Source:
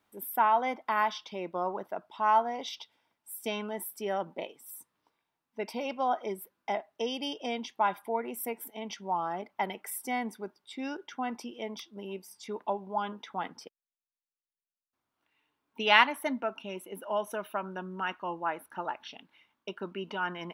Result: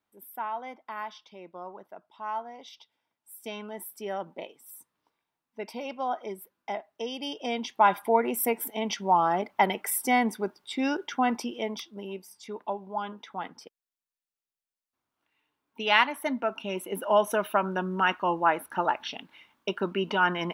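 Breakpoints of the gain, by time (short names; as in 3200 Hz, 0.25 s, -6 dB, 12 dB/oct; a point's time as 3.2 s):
2.68 s -9 dB
3.93 s -1.5 dB
7.1 s -1.5 dB
8.02 s +9 dB
11.31 s +9 dB
12.38 s -0.5 dB
16.02 s -0.5 dB
16.94 s +9 dB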